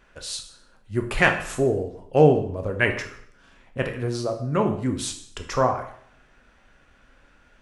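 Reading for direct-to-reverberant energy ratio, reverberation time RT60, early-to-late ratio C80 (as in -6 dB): 4.0 dB, 0.60 s, 12.0 dB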